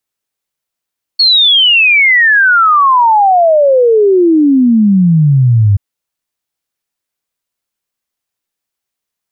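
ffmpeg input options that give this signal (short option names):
-f lavfi -i "aevalsrc='0.596*clip(min(t,4.58-t)/0.01,0,1)*sin(2*PI*4400*4.58/log(97/4400)*(exp(log(97/4400)*t/4.58)-1))':d=4.58:s=44100"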